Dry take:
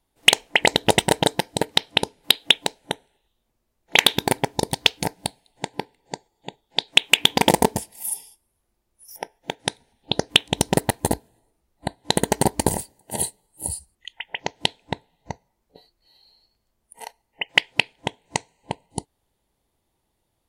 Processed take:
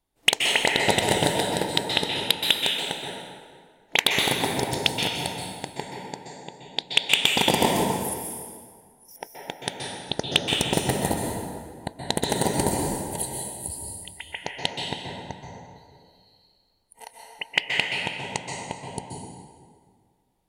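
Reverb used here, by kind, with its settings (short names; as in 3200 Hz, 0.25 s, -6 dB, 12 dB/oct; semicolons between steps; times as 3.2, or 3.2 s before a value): plate-style reverb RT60 1.9 s, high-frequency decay 0.7×, pre-delay 0.115 s, DRR -1 dB; gain -5.5 dB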